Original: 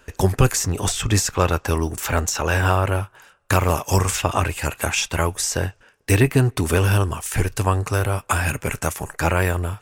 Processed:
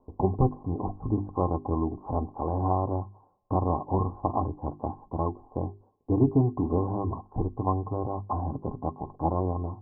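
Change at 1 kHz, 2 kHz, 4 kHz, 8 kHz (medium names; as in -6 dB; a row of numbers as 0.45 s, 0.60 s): -5.5 dB, under -40 dB, under -40 dB, under -40 dB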